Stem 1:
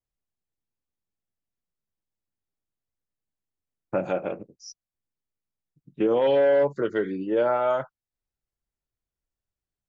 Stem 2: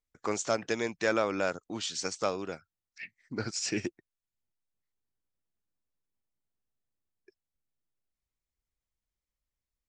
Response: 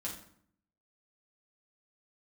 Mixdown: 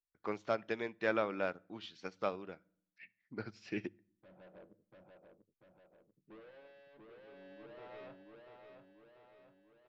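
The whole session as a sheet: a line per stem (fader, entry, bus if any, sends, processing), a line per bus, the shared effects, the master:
-13.0 dB, 0.30 s, send -14.5 dB, echo send -4 dB, low-pass 1.3 kHz; hard clipper -30.5 dBFS, distortion -5 dB; auto duck -12 dB, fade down 1.25 s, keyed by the second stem
-5.0 dB, 0.00 s, send -15 dB, no echo send, none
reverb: on, RT60 0.60 s, pre-delay 5 ms
echo: feedback delay 690 ms, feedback 56%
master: low-pass 3.8 kHz 24 dB/octave; hum notches 50/100 Hz; upward expansion 1.5:1, over -49 dBFS

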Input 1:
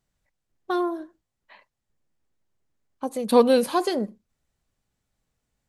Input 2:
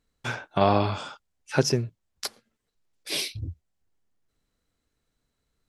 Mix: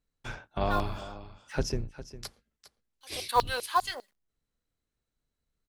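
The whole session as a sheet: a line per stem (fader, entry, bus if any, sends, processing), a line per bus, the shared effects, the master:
-5.0 dB, 0.00 s, no send, no echo send, band-stop 2.4 kHz; LFO high-pass saw down 5 Hz 790–4800 Hz; companded quantiser 6-bit
-9.5 dB, 0.00 s, no send, echo send -14.5 dB, octave divider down 2 oct, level +3 dB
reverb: none
echo: delay 405 ms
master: none

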